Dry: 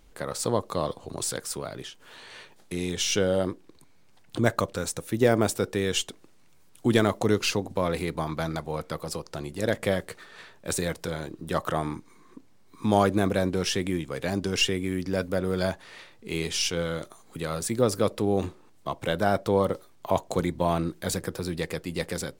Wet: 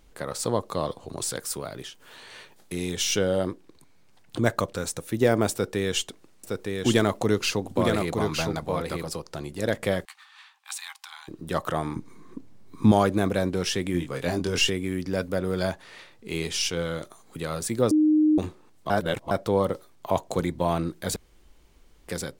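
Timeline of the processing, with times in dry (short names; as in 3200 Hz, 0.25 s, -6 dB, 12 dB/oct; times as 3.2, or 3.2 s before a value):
1.37–3.18 high shelf 12000 Hz +8 dB
5.52–9.09 echo 0.914 s -4 dB
10.05–11.28 rippled Chebyshev high-pass 770 Hz, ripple 6 dB
11.96–12.92 low shelf 440 Hz +10.5 dB
13.92–14.7 doubler 23 ms -3.5 dB
17.91–18.38 bleep 307 Hz -16 dBFS
18.9–19.31 reverse
21.16–22.08 room tone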